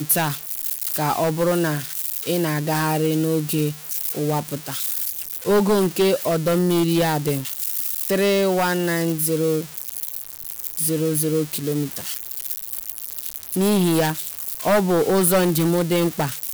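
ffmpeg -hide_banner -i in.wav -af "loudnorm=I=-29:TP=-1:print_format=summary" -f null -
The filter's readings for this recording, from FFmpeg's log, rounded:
Input Integrated:    -21.1 LUFS
Input True Peak:      -4.4 dBTP
Input LRA:             3.2 LU
Input Threshold:     -31.1 LUFS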